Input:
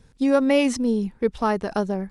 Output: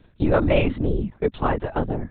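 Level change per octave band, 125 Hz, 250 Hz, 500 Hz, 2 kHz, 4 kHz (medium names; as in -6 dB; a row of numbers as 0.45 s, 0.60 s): +10.5 dB, -3.5 dB, -0.5 dB, 0.0 dB, -3.5 dB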